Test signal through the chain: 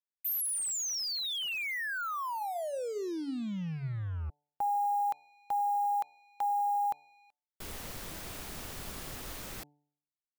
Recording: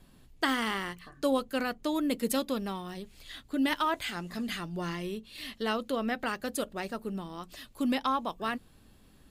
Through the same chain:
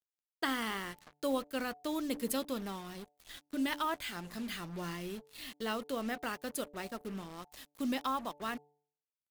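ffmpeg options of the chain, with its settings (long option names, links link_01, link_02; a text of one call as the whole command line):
ffmpeg -i in.wav -af "acrusher=bits=6:mix=0:aa=0.5,highshelf=frequency=11000:gain=5,bandreject=frequency=146.2:width_type=h:width=4,bandreject=frequency=292.4:width_type=h:width=4,bandreject=frequency=438.6:width_type=h:width=4,bandreject=frequency=584.8:width_type=h:width=4,bandreject=frequency=731:width_type=h:width=4,bandreject=frequency=877.2:width_type=h:width=4,volume=-5.5dB" out.wav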